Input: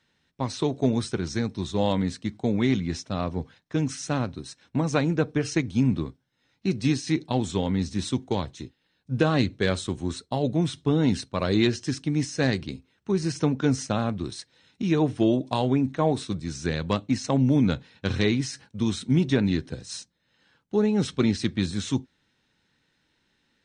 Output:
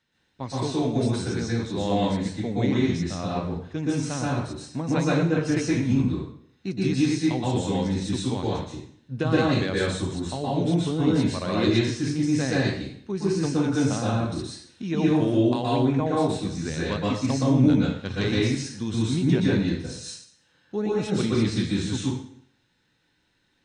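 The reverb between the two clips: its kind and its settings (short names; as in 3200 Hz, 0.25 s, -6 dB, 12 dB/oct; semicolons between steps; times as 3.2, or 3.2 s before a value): plate-style reverb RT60 0.62 s, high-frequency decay 0.9×, pre-delay 0.11 s, DRR -5.5 dB; gain -5.5 dB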